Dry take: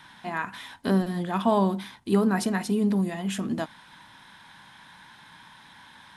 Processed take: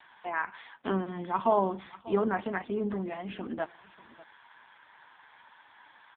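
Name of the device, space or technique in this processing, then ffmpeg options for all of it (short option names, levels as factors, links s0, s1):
satellite phone: -filter_complex "[0:a]asettb=1/sr,asplit=3[s0][s1][s2];[s0]atrim=end=0.834[s3];[s1]atrim=start=0.83:end=1.37,asetpts=PTS-STARTPTS,afade=t=in:d=0.004:c=qsin,afade=t=out:st=0.536:d=0.004:c=qsin,aecho=1:1:0.9:0.44,atrim=end_sample=23814[s4];[s2]atrim=start=1.366[s5];[s3][s4]acrossfade=d=0.004:c1=hsin:c2=qsin[s6];[s6][s5]acrossfade=d=0.004:c1=qsin:c2=hsin,highpass=350,lowpass=3200,aecho=1:1:593:0.106" -ar 8000 -c:a libopencore_amrnb -b:a 5150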